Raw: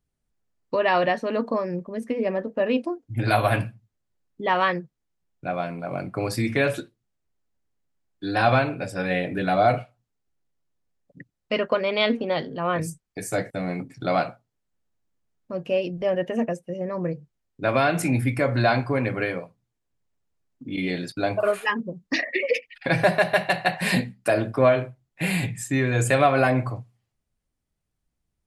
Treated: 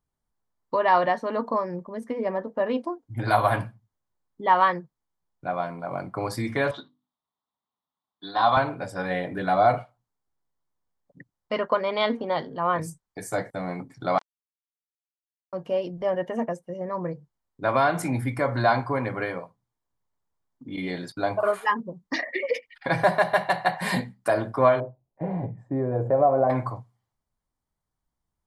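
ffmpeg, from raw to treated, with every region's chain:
ffmpeg -i in.wav -filter_complex "[0:a]asettb=1/sr,asplit=3[link_01][link_02][link_03];[link_01]atrim=end=6.714[link_04];[link_02]atrim=start=6.71:end=8.57,asetpts=PTS-STARTPTS,afade=type=in:duration=0.004:curve=qsin,afade=type=out:start_time=1.856:duration=0.004:curve=qsin,highpass=200,equalizer=frequency=350:width_type=q:width=4:gain=-10,equalizer=frequency=520:width_type=q:width=4:gain=-8,equalizer=frequency=1100:width_type=q:width=4:gain=5,equalizer=frequency=1600:width_type=q:width=4:gain=-8,equalizer=frequency=2400:width_type=q:width=4:gain=-9,equalizer=frequency=3600:width_type=q:width=4:gain=10,lowpass=frequency=4300:width=0.5412,lowpass=frequency=4300:width=1.3066,bandreject=frequency=50:width_type=h:width=6,bandreject=frequency=100:width_type=h:width=6,bandreject=frequency=150:width_type=h:width=6,bandreject=frequency=200:width_type=h:width=6,bandreject=frequency=250:width_type=h:width=6,bandreject=frequency=300:width_type=h:width=6[link_05];[link_03]atrim=start=8.566[link_06];[link_04][link_05]acrossfade=duration=0.004:curve1=hsin:curve2=qsin[link_07];[link_07][link_06]acrossfade=duration=0.004:curve1=qsin:curve2=hsin,asettb=1/sr,asplit=3[link_08][link_09][link_10];[link_08]atrim=end=14.184[link_11];[link_09]atrim=start=14.18:end=15.53,asetpts=PTS-STARTPTS,afade=type=in:duration=0.004:curve=qsin,afade=type=out:start_time=1.346:duration=0.004:curve=qsin,acompressor=threshold=-23dB:ratio=20:attack=3.2:release=140:knee=1:detection=peak,acrusher=bits=2:mix=0:aa=0.5,highpass=290,lowpass=8000[link_12];[link_10]atrim=start=15.526[link_13];[link_11][link_12]acrossfade=duration=0.004:curve1=hsin:curve2=qsin[link_14];[link_14][link_13]acrossfade=duration=0.004:curve1=qsin:curve2=hsin,asettb=1/sr,asplit=3[link_15][link_16][link_17];[link_15]atrim=end=24.804[link_18];[link_16]atrim=start=24.8:end=26.5,asetpts=PTS-STARTPTS,afade=type=in:duration=0.004:curve=qsin,afade=type=out:start_time=1.696:duration=0.004:curve=qsin,lowpass=frequency=590:width_type=q:width=2.2,acompressor=threshold=-20dB:ratio=1.5:attack=3.2:release=140:knee=1:detection=peak[link_19];[link_17]atrim=start=26.496[link_20];[link_18][link_19]acrossfade=duration=0.004:curve1=hsin:curve2=qsin[link_21];[link_21][link_20]acrossfade=duration=0.004:curve1=qsin:curve2=hsin,equalizer=frequency=970:width=1.7:gain=10.5,bandreject=frequency=2600:width=5,volume=-4.5dB" out.wav

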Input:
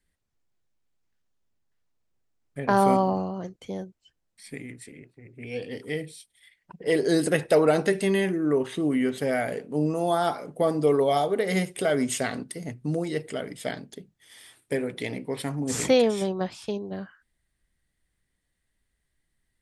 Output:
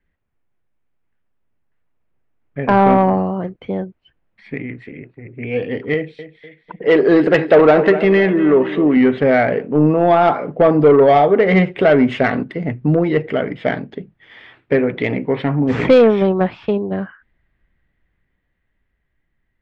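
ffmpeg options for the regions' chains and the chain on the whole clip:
ffmpeg -i in.wav -filter_complex "[0:a]asettb=1/sr,asplit=3[link_01][link_02][link_03];[link_01]atrim=end=5.944[link_04];[link_02]atrim=start=5.94:end=8.97,asetpts=PTS-STARTPTS,afade=type=in:duration=0.004:curve=qsin,afade=type=out:start_time=3.026:duration=0.004:curve=qsin,equalizer=frequency=61:width=0.6:gain=-14,aecho=1:1:248|496|744|992:0.2|0.0878|0.0386|0.017,atrim=end_sample=133623[link_05];[link_03]atrim=start=8.966[link_06];[link_04][link_05]acrossfade=duration=0.004:curve1=hsin:curve2=qsin[link_07];[link_07][link_06]acrossfade=duration=0.004:curve1=qsin:curve2=hsin,dynaudnorm=framelen=370:gausssize=13:maxgain=9dB,lowpass=frequency=2600:width=0.5412,lowpass=frequency=2600:width=1.3066,acontrast=90,volume=-1dB" out.wav

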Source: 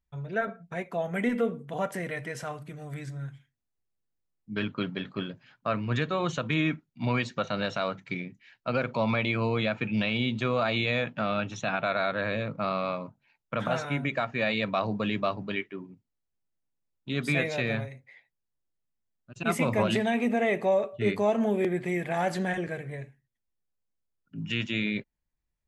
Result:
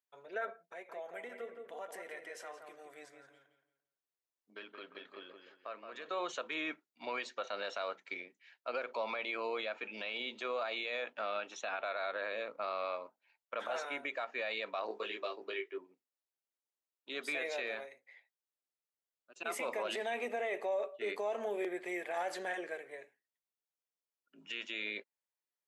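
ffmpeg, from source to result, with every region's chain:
ffmpeg -i in.wav -filter_complex "[0:a]asettb=1/sr,asplit=3[link_01][link_02][link_03];[link_01]atrim=end=0.584[link_04];[link_02]atrim=start=0.58:end=6.06,asetpts=PTS-STARTPTS,afade=type=in:duration=0.004:curve=qsin,afade=type=out:start_time=5.476:duration=0.004:curve=qsin,acompressor=threshold=-41dB:ratio=2:attack=3.2:release=140:knee=1:detection=peak,asplit=2[link_05][link_06];[link_06]adelay=171,lowpass=frequency=2500:poles=1,volume=-6dB,asplit=2[link_07][link_08];[link_08]adelay=171,lowpass=frequency=2500:poles=1,volume=0.33,asplit=2[link_09][link_10];[link_10]adelay=171,lowpass=frequency=2500:poles=1,volume=0.33,asplit=2[link_11][link_12];[link_12]adelay=171,lowpass=frequency=2500:poles=1,volume=0.33[link_13];[link_05][link_07][link_09][link_11][link_13]amix=inputs=5:normalize=0,atrim=end_sample=241668[link_14];[link_03]atrim=start=6.056[link_15];[link_04][link_14]acrossfade=duration=0.004:curve1=hsin:curve2=qsin[link_16];[link_16][link_15]acrossfade=duration=0.004:curve1=qsin:curve2=hsin,asettb=1/sr,asplit=3[link_17][link_18][link_19];[link_17]atrim=end=14.884[link_20];[link_18]atrim=start=14.88:end=15.78,asetpts=PTS-STARTPTS,afade=type=in:duration=0.004:curve=qsin,afade=type=out:start_time=0.896:duration=0.004:curve=qsin,equalizer=frequency=390:width_type=o:width=0.9:gain=13.5,acrossover=split=870|2200[link_21][link_22][link_23];[link_21]acompressor=threshold=-36dB:ratio=4[link_24];[link_22]acompressor=threshold=-41dB:ratio=4[link_25];[link_23]acompressor=threshold=-38dB:ratio=4[link_26];[link_24][link_25][link_26]amix=inputs=3:normalize=0,asplit=2[link_27][link_28];[link_28]adelay=18,volume=-2.5dB[link_29];[link_27][link_29]amix=inputs=2:normalize=0,atrim=end_sample=39690[link_30];[link_19]atrim=start=15.776[link_31];[link_20][link_30]acrossfade=duration=0.004:curve1=hsin:curve2=qsin[link_32];[link_32][link_31]acrossfade=duration=0.004:curve1=qsin:curve2=hsin,highpass=frequency=390:width=0.5412,highpass=frequency=390:width=1.3066,alimiter=limit=-22.5dB:level=0:latency=1:release=34,volume=-5.5dB" out.wav

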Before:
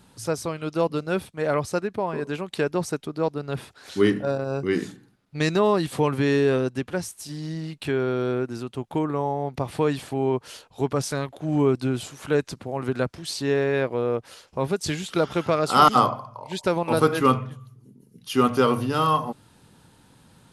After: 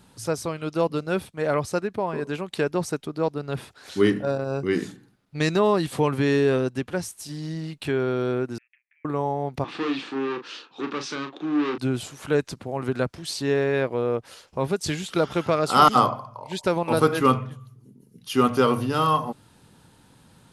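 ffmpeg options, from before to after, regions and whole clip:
ffmpeg -i in.wav -filter_complex "[0:a]asettb=1/sr,asplit=3[link_01][link_02][link_03];[link_01]atrim=end=8.584[link_04];[link_02]atrim=start=8.58:end=9.05,asetpts=PTS-STARTPTS,afade=type=in:duration=0.004:curve=qsin,afade=type=out:start_time=0.466:duration=0.004:curve=qsin,acompressor=threshold=-34dB:ratio=10:attack=3.2:release=140:knee=1:detection=peak,asuperpass=centerf=2100:order=8:qfactor=2.6[link_05];[link_03]atrim=start=9.046[link_06];[link_04][link_05]acrossfade=duration=0.004:curve1=hsin:curve2=qsin[link_07];[link_07][link_06]acrossfade=duration=0.004:curve1=qsin:curve2=hsin,asettb=1/sr,asplit=3[link_08][link_09][link_10];[link_08]atrim=end=9.644[link_11];[link_09]atrim=start=9.64:end=11.78,asetpts=PTS-STARTPTS,afade=type=in:duration=0.004:curve=qsin,afade=type=out:start_time=2.136:duration=0.004:curve=qsin,volume=28dB,asoftclip=hard,volume=-28dB,highpass=frequency=200:width=0.5412,highpass=frequency=200:width=1.3066,equalizer=frequency=310:width_type=q:width=4:gain=10,equalizer=frequency=630:width_type=q:width=4:gain=-9,equalizer=frequency=1200:width_type=q:width=4:gain=7,equalizer=frequency=1700:width_type=q:width=4:gain=4,equalizer=frequency=2600:width_type=q:width=4:gain=7,equalizer=frequency=3700:width_type=q:width=4:gain=5,lowpass=frequency=5700:width=0.5412,lowpass=frequency=5700:width=1.3066,asplit=2[link_12][link_13];[link_13]adelay=37,volume=-8dB[link_14];[link_12][link_14]amix=inputs=2:normalize=0,atrim=end_sample=94374[link_15];[link_10]atrim=start=11.776[link_16];[link_11][link_15]acrossfade=duration=0.004:curve1=hsin:curve2=qsin[link_17];[link_17][link_16]acrossfade=duration=0.004:curve1=qsin:curve2=hsin" out.wav

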